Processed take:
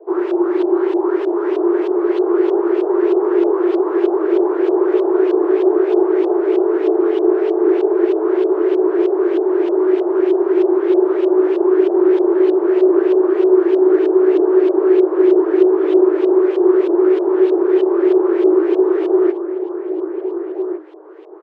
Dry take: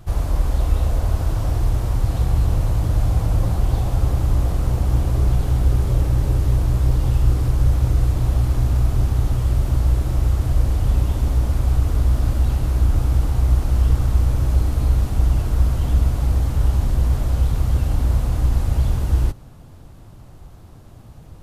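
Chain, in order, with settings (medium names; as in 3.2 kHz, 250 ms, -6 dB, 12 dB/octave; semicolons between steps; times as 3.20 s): LFO low-pass saw up 3.2 Hz 330–3000 Hz; frequency shift +310 Hz; echo from a far wall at 250 m, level -6 dB; trim +1 dB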